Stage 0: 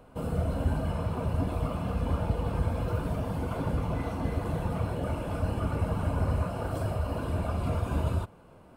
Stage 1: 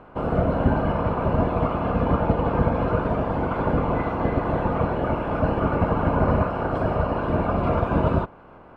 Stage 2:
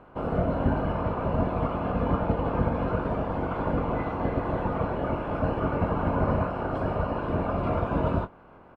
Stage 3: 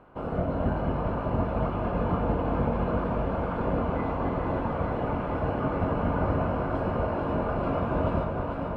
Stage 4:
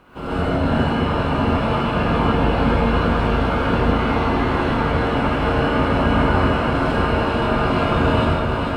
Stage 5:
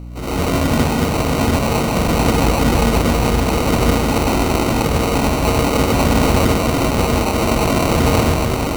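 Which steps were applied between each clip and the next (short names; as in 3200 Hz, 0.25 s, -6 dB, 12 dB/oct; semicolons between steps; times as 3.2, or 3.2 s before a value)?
spectral limiter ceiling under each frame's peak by 13 dB; LPF 1800 Hz 12 dB/oct; gain +7.5 dB
doubler 22 ms -10 dB; gain -5 dB
echo with dull and thin repeats by turns 0.221 s, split 880 Hz, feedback 90%, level -5 dB; gain -3 dB
EQ curve 380 Hz 0 dB, 600 Hz -5 dB, 4400 Hz +14 dB; non-linear reverb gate 0.17 s rising, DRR -7.5 dB; gain +2.5 dB
sample-and-hold 26×; hum 60 Hz, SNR 15 dB; gain +2.5 dB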